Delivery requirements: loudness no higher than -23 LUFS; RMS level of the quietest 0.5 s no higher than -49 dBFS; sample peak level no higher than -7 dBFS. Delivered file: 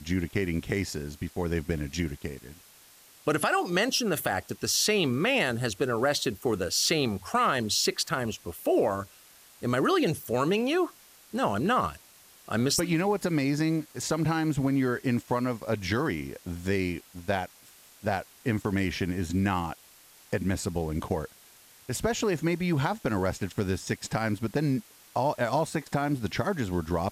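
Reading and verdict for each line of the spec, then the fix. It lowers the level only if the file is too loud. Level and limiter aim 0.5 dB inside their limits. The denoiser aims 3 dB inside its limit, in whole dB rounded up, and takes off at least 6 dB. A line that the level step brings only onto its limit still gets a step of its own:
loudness -28.5 LUFS: OK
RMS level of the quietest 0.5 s -55 dBFS: OK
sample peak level -14.0 dBFS: OK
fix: none

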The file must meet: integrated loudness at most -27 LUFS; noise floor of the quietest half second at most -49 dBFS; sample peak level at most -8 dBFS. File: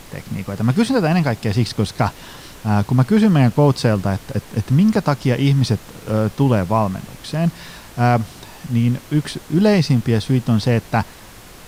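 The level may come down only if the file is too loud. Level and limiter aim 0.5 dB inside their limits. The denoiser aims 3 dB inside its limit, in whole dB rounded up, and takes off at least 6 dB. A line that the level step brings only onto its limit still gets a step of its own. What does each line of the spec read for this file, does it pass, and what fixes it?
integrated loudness -18.0 LUFS: fail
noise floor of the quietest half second -40 dBFS: fail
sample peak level -3.5 dBFS: fail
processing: gain -9.5 dB

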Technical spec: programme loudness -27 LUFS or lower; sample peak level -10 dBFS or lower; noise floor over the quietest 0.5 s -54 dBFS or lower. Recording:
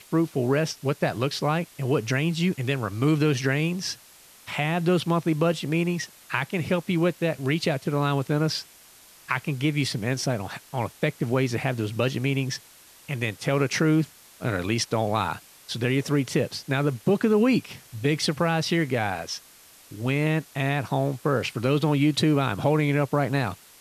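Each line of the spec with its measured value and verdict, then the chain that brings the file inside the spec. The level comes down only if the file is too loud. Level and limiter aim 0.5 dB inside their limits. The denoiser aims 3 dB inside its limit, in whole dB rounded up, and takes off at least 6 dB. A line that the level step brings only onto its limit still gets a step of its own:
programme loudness -25.5 LUFS: fail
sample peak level -8.0 dBFS: fail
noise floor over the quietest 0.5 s -52 dBFS: fail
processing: denoiser 6 dB, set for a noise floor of -52 dBFS; gain -2 dB; limiter -10.5 dBFS

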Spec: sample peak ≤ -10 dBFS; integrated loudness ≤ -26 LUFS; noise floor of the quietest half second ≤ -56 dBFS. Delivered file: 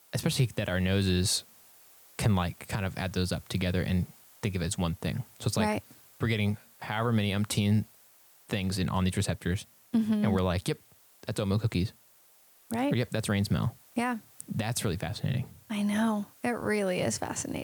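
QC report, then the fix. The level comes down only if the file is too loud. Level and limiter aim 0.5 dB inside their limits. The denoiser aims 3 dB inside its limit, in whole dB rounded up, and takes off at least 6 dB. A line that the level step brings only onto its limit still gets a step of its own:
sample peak -12.5 dBFS: OK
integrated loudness -30.5 LUFS: OK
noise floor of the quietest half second -60 dBFS: OK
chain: none

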